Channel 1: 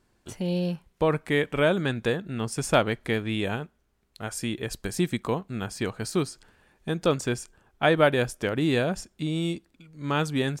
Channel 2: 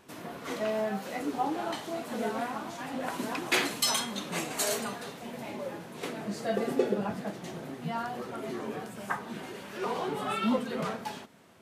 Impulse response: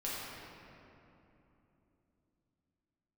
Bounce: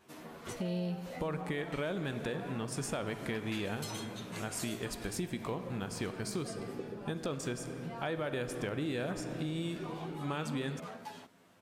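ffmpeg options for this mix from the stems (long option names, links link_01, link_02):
-filter_complex "[0:a]alimiter=limit=-17dB:level=0:latency=1,adelay=200,volume=-5.5dB,asplit=2[link_01][link_02];[link_02]volume=-10.5dB[link_03];[1:a]acompressor=threshold=-40dB:ratio=2,asplit=2[link_04][link_05];[link_05]adelay=10.4,afreqshift=0.3[link_06];[link_04][link_06]amix=inputs=2:normalize=1,volume=-2.5dB[link_07];[2:a]atrim=start_sample=2205[link_08];[link_03][link_08]afir=irnorm=-1:irlink=0[link_09];[link_01][link_07][link_09]amix=inputs=3:normalize=0,acompressor=threshold=-34dB:ratio=3"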